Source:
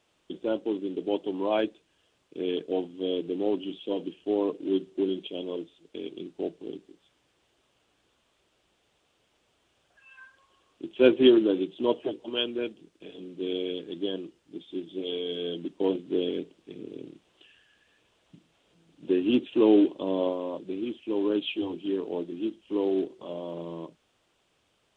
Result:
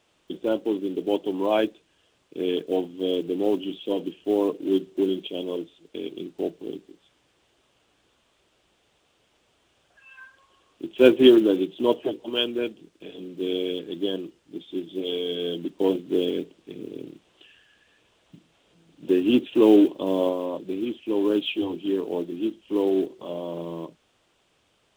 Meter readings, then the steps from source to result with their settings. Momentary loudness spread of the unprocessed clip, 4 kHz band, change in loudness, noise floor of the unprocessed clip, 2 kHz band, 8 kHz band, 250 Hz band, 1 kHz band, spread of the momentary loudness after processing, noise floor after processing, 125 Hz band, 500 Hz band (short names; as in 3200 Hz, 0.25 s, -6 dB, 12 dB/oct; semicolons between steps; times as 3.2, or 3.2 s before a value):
19 LU, +4.0 dB, +4.0 dB, -71 dBFS, +4.0 dB, n/a, +4.0 dB, +4.0 dB, 19 LU, -67 dBFS, +4.0 dB, +4.0 dB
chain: block floating point 7-bit; gain +4 dB